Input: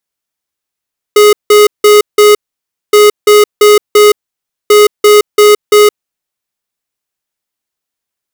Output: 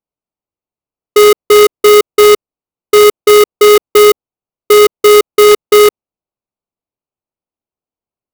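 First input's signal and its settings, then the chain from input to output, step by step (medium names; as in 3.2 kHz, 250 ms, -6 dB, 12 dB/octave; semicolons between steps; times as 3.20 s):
beep pattern square 418 Hz, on 0.17 s, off 0.17 s, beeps 4, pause 0.58 s, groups 3, -3.5 dBFS
local Wiener filter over 25 samples; sampling jitter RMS 0.028 ms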